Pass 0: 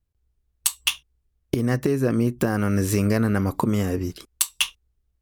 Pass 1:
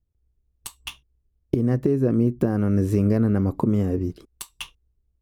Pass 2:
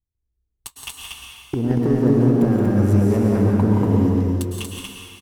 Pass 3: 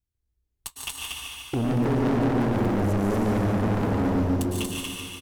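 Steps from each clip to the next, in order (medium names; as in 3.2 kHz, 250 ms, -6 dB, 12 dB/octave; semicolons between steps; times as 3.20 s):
FFT filter 380 Hz 0 dB, 1.6 kHz -12 dB, 7.4 kHz -17 dB; trim +1.5 dB
waveshaping leveller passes 2; on a send: loudspeakers at several distances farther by 59 m -6 dB, 81 m -3 dB; on the sum: plate-style reverb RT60 1.9 s, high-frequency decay 0.95×, pre-delay 95 ms, DRR 0.5 dB; trim -7 dB
Chebyshev shaper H 6 -19 dB, 8 -18 dB, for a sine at -4.5 dBFS; overload inside the chain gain 22 dB; feedback delay 146 ms, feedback 56%, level -7 dB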